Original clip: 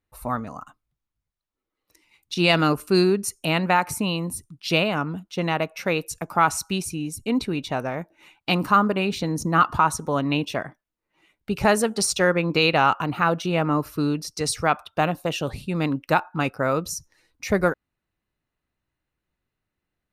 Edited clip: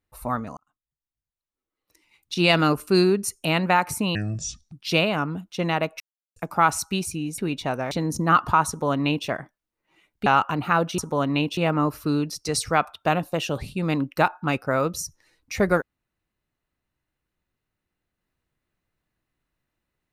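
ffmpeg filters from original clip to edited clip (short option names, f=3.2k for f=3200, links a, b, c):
-filter_complex "[0:a]asplit=11[a][b][c][d][e][f][g][h][i][j][k];[a]atrim=end=0.57,asetpts=PTS-STARTPTS,afade=t=out:st=0.566:d=0.004:c=hsin[l];[b]atrim=start=0.57:end=4.154,asetpts=PTS-STARTPTS,afade=t=in:d=1.82[m];[c]atrim=start=4.15:end=4.51,asetpts=PTS-STARTPTS,asetrate=27783,aresample=44100[n];[d]atrim=start=4.506:end=5.79,asetpts=PTS-STARTPTS,afade=t=out:st=1.28:d=0.004:c=hsin[o];[e]atrim=start=5.79:end=6.15,asetpts=PTS-STARTPTS,volume=0[p];[f]atrim=start=6.15:end=7.172,asetpts=PTS-STARTPTS,afade=t=in:d=0.004:c=hsin[q];[g]atrim=start=7.438:end=7.972[r];[h]atrim=start=9.168:end=11.522[s];[i]atrim=start=12.768:end=13.492[t];[j]atrim=start=9.938:end=10.532[u];[k]atrim=start=13.488[v];[l][m]concat=n=2:v=0:a=1[w];[w][n]acrossfade=d=0.004:c1=hsin:c2=hsin[x];[o][p][q]concat=n=3:v=0:a=1[y];[x][y]acrossfade=d=0.004:c1=hsin:c2=hsin[z];[z][r]acrossfade=d=0.004:c1=hsin:c2=hsin[aa];[aa][s]acrossfade=d=0.004:c1=hsin:c2=hsin[ab];[ab][t]acrossfade=d=0.004:c1=hsin:c2=hsin[ac];[ac][u]acrossfade=d=0.004:c1=hsin:c2=hsin[ad];[ad][v]acrossfade=d=0.004:c1=hsin:c2=hsin"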